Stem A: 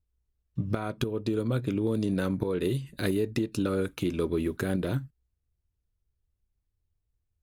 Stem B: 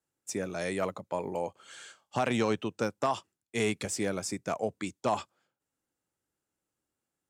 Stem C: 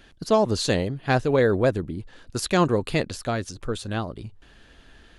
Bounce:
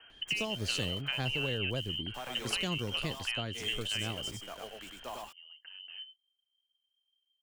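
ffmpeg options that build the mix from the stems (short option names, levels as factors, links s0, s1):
-filter_complex "[0:a]lowshelf=f=380:g=5.5,acompressor=threshold=0.0355:ratio=5,adelay=1050,volume=0.355[s0];[1:a]lowshelf=f=390:g=-12,acrusher=bits=6:mix=0:aa=0.000001,volume=0.299,asplit=3[s1][s2][s3];[s2]volume=0.708[s4];[2:a]volume=0.631,asplit=2[s5][s6];[s6]volume=0.562[s7];[s3]apad=whole_len=373713[s8];[s0][s8]sidechaincompress=threshold=0.002:ratio=12:attack=28:release=1060[s9];[s9][s5]amix=inputs=2:normalize=0,lowpass=f=2700:t=q:w=0.5098,lowpass=f=2700:t=q:w=0.6013,lowpass=f=2700:t=q:w=0.9,lowpass=f=2700:t=q:w=2.563,afreqshift=-3200,acompressor=threshold=0.0355:ratio=6,volume=1[s10];[s4][s7]amix=inputs=2:normalize=0,aecho=0:1:100:1[s11];[s1][s10][s11]amix=inputs=3:normalize=0,acrossover=split=170|3000[s12][s13][s14];[s13]acompressor=threshold=0.0158:ratio=6[s15];[s12][s15][s14]amix=inputs=3:normalize=0"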